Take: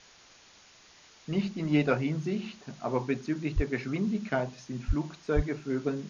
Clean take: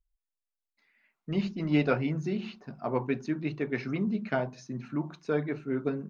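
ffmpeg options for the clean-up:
ffmpeg -i in.wav -filter_complex "[0:a]asplit=3[link_01][link_02][link_03];[link_01]afade=type=out:start_time=3.55:duration=0.02[link_04];[link_02]highpass=frequency=140:width=0.5412,highpass=frequency=140:width=1.3066,afade=type=in:start_time=3.55:duration=0.02,afade=type=out:start_time=3.67:duration=0.02[link_05];[link_03]afade=type=in:start_time=3.67:duration=0.02[link_06];[link_04][link_05][link_06]amix=inputs=3:normalize=0,asplit=3[link_07][link_08][link_09];[link_07]afade=type=out:start_time=4.87:duration=0.02[link_10];[link_08]highpass=frequency=140:width=0.5412,highpass=frequency=140:width=1.3066,afade=type=in:start_time=4.87:duration=0.02,afade=type=out:start_time=4.99:duration=0.02[link_11];[link_09]afade=type=in:start_time=4.99:duration=0.02[link_12];[link_10][link_11][link_12]amix=inputs=3:normalize=0,asplit=3[link_13][link_14][link_15];[link_13]afade=type=out:start_time=5.35:duration=0.02[link_16];[link_14]highpass=frequency=140:width=0.5412,highpass=frequency=140:width=1.3066,afade=type=in:start_time=5.35:duration=0.02,afade=type=out:start_time=5.47:duration=0.02[link_17];[link_15]afade=type=in:start_time=5.47:duration=0.02[link_18];[link_16][link_17][link_18]amix=inputs=3:normalize=0,afwtdn=0.0025" out.wav

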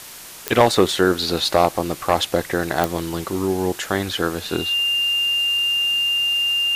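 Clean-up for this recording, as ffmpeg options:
ffmpeg -i in.wav -af "adeclick=threshold=4,bandreject=frequency=2800:width=30,afwtdn=0.014" out.wav

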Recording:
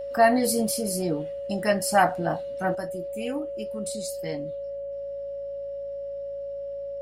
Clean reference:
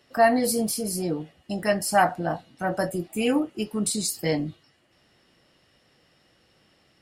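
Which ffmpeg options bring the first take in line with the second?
ffmpeg -i in.wav -af "bandreject=frequency=55.4:width_type=h:width=4,bandreject=frequency=110.8:width_type=h:width=4,bandreject=frequency=166.2:width_type=h:width=4,bandreject=frequency=221.6:width_type=h:width=4,bandreject=frequency=560:width=30,asetnsamples=nb_out_samples=441:pad=0,asendcmd='2.75 volume volume 9dB',volume=0dB" out.wav

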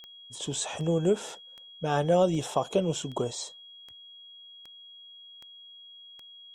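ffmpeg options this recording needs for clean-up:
ffmpeg -i in.wav -af "adeclick=threshold=4,bandreject=frequency=3300:width=30" out.wav

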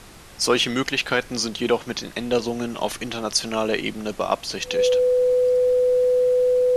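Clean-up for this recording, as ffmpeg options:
ffmpeg -i in.wav -af "bandreject=frequency=500:width=30,afftdn=noise_reduction=27:noise_floor=-41" out.wav

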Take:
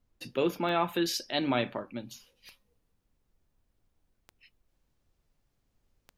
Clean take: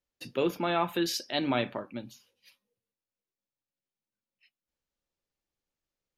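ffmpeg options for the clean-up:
ffmpeg -i in.wav -af "adeclick=threshold=4,agate=range=-21dB:threshold=-68dB,asetnsamples=nb_out_samples=441:pad=0,asendcmd='2.11 volume volume -6dB',volume=0dB" out.wav

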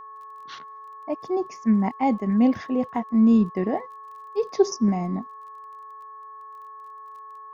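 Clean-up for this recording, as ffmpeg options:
ffmpeg -i in.wav -af "adeclick=threshold=4,bandreject=frequency=431.5:width_type=h:width=4,bandreject=frequency=863:width_type=h:width=4,bandreject=frequency=1294.5:width_type=h:width=4,bandreject=frequency=1726:width_type=h:width=4,bandreject=frequency=1100:width=30" out.wav

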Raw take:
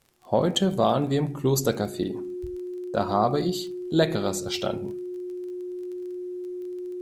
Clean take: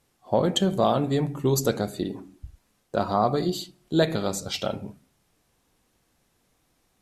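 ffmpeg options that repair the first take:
ffmpeg -i in.wav -af "adeclick=threshold=4,bandreject=frequency=360:width=30" out.wav

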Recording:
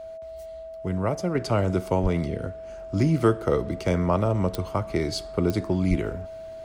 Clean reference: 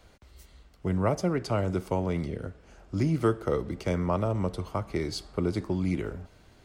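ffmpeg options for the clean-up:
ffmpeg -i in.wav -filter_complex "[0:a]adeclick=threshold=4,bandreject=frequency=650:width=30,asplit=3[link_01][link_02][link_03];[link_01]afade=type=out:start_time=2.02:duration=0.02[link_04];[link_02]highpass=frequency=140:width=0.5412,highpass=frequency=140:width=1.3066,afade=type=in:start_time=2.02:duration=0.02,afade=type=out:start_time=2.14:duration=0.02[link_05];[link_03]afade=type=in:start_time=2.14:duration=0.02[link_06];[link_04][link_05][link_06]amix=inputs=3:normalize=0,asplit=3[link_07][link_08][link_09];[link_07]afade=type=out:start_time=5.89:duration=0.02[link_10];[link_08]highpass=frequency=140:width=0.5412,highpass=frequency=140:width=1.3066,afade=type=in:start_time=5.89:duration=0.02,afade=type=out:start_time=6.01:duration=0.02[link_11];[link_09]afade=type=in:start_time=6.01:duration=0.02[link_12];[link_10][link_11][link_12]amix=inputs=3:normalize=0,asetnsamples=nb_out_samples=441:pad=0,asendcmd='1.35 volume volume -4.5dB',volume=0dB" out.wav

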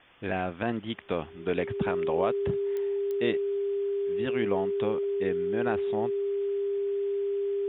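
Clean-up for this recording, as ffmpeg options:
ffmpeg -i in.wav -af "adeclick=threshold=4,bandreject=frequency=400:width=30,afwtdn=0.0025" out.wav

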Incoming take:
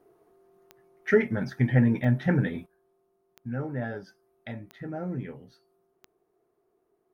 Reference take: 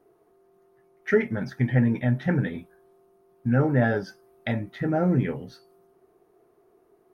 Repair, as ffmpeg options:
ffmpeg -i in.wav -af "adeclick=threshold=4,asetnsamples=nb_out_samples=441:pad=0,asendcmd='2.66 volume volume 11dB',volume=0dB" out.wav

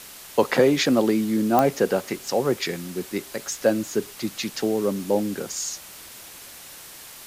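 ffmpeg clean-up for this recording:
ffmpeg -i in.wav -af "adeclick=threshold=4,afwtdn=0.0089" out.wav

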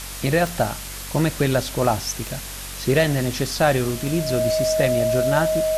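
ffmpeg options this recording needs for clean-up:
ffmpeg -i in.wav -af "adeclick=threshold=4,bandreject=frequency=46.8:width_type=h:width=4,bandreject=frequency=93.6:width_type=h:width=4,bandreject=frequency=140.4:width_type=h:width=4,bandreject=frequency=187.2:width_type=h:width=4,bandreject=frequency=234:width_type=h:width=4,bandreject=frequency=280.8:width_type=h:width=4,bandreject=frequency=630:width=30,afftdn=noise_reduction=30:noise_floor=-33" out.wav

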